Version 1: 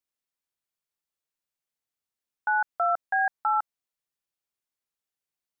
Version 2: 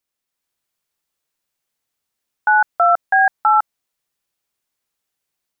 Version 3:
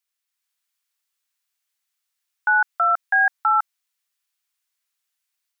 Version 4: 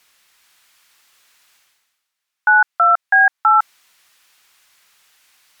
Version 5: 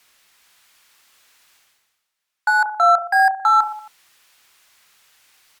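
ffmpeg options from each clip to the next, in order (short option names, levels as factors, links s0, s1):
-af "dynaudnorm=f=250:g=3:m=1.58,volume=2.24"
-af "highpass=1300"
-af "areverse,acompressor=mode=upward:threshold=0.0141:ratio=2.5,areverse,aemphasis=mode=reproduction:type=cd,volume=2"
-filter_complex "[0:a]acrossover=split=1000|1100[s0][s1][s2];[s0]aecho=1:1:30|69|119.7|185.6|271.3:0.631|0.398|0.251|0.158|0.1[s3];[s2]asoftclip=type=tanh:threshold=0.0501[s4];[s3][s1][s4]amix=inputs=3:normalize=0"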